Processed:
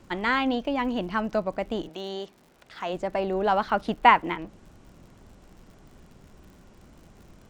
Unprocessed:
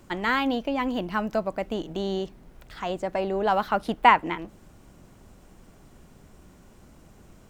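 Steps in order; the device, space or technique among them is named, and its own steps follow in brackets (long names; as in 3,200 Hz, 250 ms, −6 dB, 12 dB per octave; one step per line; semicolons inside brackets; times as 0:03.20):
0:01.88–0:02.92: high-pass filter 790 Hz → 290 Hz 6 dB per octave
lo-fi chain (low-pass filter 6,700 Hz 12 dB per octave; tape wow and flutter; surface crackle 89 per second −45 dBFS)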